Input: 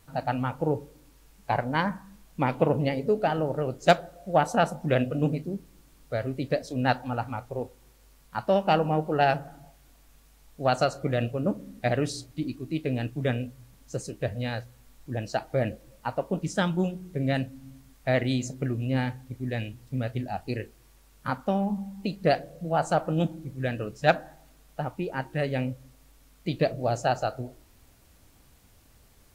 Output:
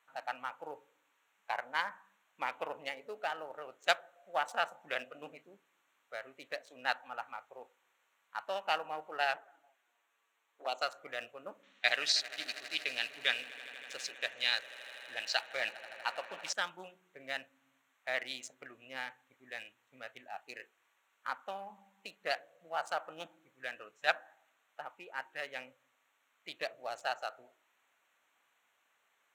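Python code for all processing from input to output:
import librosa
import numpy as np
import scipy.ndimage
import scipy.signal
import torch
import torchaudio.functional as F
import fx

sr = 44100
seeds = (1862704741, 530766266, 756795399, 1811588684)

y = fx.chain(x, sr, fx.highpass_res(hz=330.0, q=1.8),
    fx.env_flanger(rest_ms=9.0, full_db=-22.0), at=(9.36, 10.82))
y = fx.chain(y, sr, fx.lowpass(hz=5700.0, slope=12),
    fx.peak_eq(hz=3900.0, db=15.0, octaves=2.1),
    fx.echo_swell(ms=80, loudest=5, wet_db=-18.0), at=(11.63, 16.53))
y = fx.wiener(y, sr, points=9)
y = scipy.signal.sosfilt(scipy.signal.butter(2, 1200.0, 'highpass', fs=sr, output='sos'), y)
y = y * 10.0 ** (-2.5 / 20.0)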